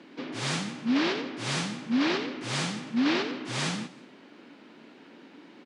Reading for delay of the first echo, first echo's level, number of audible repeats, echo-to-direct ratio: 0.16 s, -20.5 dB, 2, -20.0 dB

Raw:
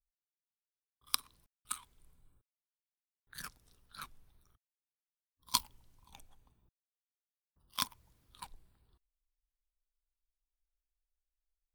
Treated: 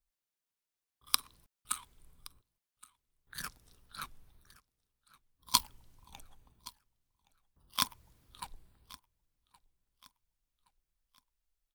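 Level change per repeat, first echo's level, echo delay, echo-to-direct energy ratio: -8.0 dB, -21.5 dB, 1.12 s, -21.0 dB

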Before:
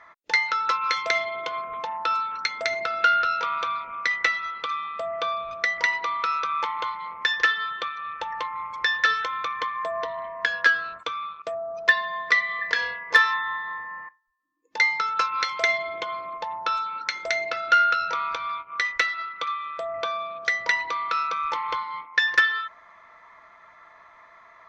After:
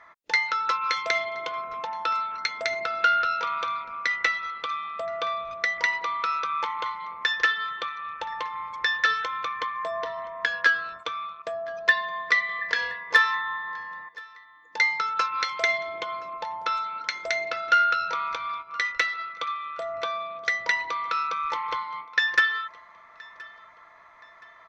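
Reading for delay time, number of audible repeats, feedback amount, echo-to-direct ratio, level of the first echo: 1.022 s, 2, 37%, -22.5 dB, -23.0 dB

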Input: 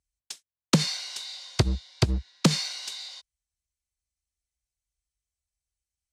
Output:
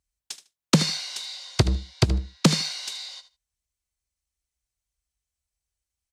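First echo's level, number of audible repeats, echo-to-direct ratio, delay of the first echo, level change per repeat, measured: -14.0 dB, 2, -14.0 dB, 76 ms, -15.5 dB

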